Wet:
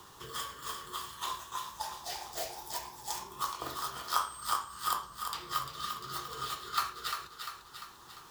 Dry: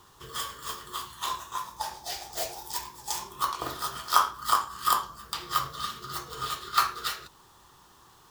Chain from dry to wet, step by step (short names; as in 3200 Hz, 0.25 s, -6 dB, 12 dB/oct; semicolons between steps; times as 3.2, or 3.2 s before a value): 4.16–4.56 whine 8300 Hz -41 dBFS; thinning echo 0.347 s, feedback 44%, high-pass 550 Hz, level -8.5 dB; three-band squash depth 40%; gain -6 dB